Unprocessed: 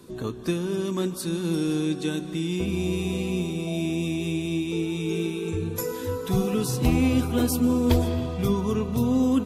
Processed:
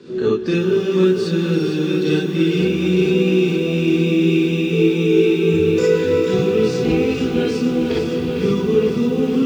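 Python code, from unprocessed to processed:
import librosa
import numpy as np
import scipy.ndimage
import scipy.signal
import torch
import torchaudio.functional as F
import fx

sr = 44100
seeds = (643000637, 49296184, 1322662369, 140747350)

y = fx.high_shelf(x, sr, hz=5200.0, db=-10.5)
y = fx.rider(y, sr, range_db=4, speed_s=0.5)
y = fx.cabinet(y, sr, low_hz=150.0, low_slope=12, high_hz=6600.0, hz=(450.0, 670.0, 1000.0, 1700.0, 2800.0, 4700.0), db=(9, -8, -9, 3, 4, 4))
y = y + 10.0 ** (-14.0 / 20.0) * np.pad(y, (int(334 * sr / 1000.0), 0))[:len(y)]
y = fx.rev_gated(y, sr, seeds[0], gate_ms=80, shape='rising', drr_db=-4.0)
y = fx.echo_crushed(y, sr, ms=456, feedback_pct=80, bits=8, wet_db=-8)
y = y * librosa.db_to_amplitude(1.5)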